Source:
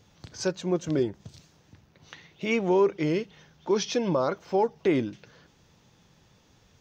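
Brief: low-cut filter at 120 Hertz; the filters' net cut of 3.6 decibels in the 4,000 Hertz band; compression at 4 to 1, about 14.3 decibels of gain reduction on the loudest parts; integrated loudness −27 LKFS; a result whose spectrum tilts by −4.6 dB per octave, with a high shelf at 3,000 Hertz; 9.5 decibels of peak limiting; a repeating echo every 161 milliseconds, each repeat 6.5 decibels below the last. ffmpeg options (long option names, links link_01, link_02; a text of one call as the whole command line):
ffmpeg -i in.wav -af "highpass=120,highshelf=frequency=3000:gain=4,equalizer=frequency=4000:width_type=o:gain=-8.5,acompressor=threshold=-36dB:ratio=4,alimiter=level_in=8.5dB:limit=-24dB:level=0:latency=1,volume=-8.5dB,aecho=1:1:161|322|483|644|805|966:0.473|0.222|0.105|0.0491|0.0231|0.0109,volume=15.5dB" out.wav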